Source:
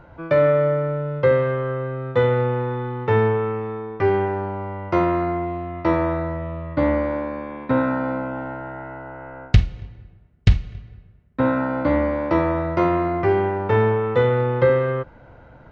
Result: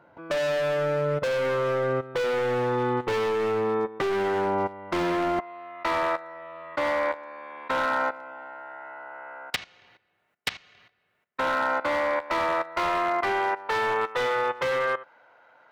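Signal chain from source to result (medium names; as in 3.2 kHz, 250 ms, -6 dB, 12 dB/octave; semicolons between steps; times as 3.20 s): high-pass 230 Hz 12 dB/octave, from 5.39 s 880 Hz; overload inside the chain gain 25 dB; level held to a coarse grid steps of 16 dB; trim +7 dB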